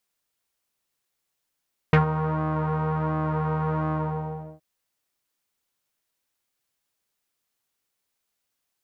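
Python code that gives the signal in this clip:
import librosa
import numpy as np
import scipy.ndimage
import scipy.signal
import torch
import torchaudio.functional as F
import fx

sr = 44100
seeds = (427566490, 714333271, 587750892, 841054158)

y = fx.sub_patch_pwm(sr, seeds[0], note=51, wave2='saw', interval_st=19, detune_cents=25, level2_db=-9.0, sub_db=-15.0, noise_db=-30.0, kind='lowpass', cutoff_hz=640.0, q=2.6, env_oct=2.0, env_decay_s=0.06, env_sustain_pct=40, attack_ms=1.8, decay_s=0.12, sustain_db=-11.5, release_s=0.68, note_s=1.99, lfo_hz=1.4, width_pct=44, width_swing_pct=11)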